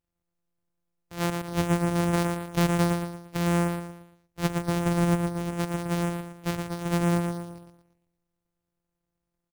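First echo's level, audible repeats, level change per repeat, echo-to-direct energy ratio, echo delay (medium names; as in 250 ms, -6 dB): -5.5 dB, 4, -8.0 dB, -5.0 dB, 116 ms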